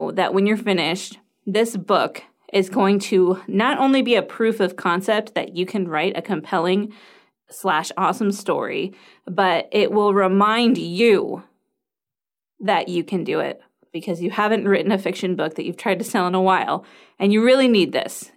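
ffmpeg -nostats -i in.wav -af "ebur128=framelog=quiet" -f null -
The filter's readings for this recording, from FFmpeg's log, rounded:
Integrated loudness:
  I:         -19.9 LUFS
  Threshold: -30.3 LUFS
Loudness range:
  LRA:         4.0 LU
  Threshold: -40.8 LUFS
  LRA low:   -23.1 LUFS
  LRA high:  -19.2 LUFS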